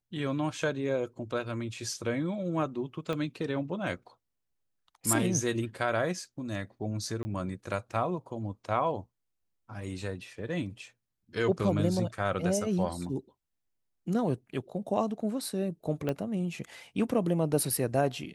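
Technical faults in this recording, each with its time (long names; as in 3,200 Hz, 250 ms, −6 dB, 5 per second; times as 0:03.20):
0:03.13: click −21 dBFS
0:07.23–0:07.25: drop-out 20 ms
0:16.09: click −18 dBFS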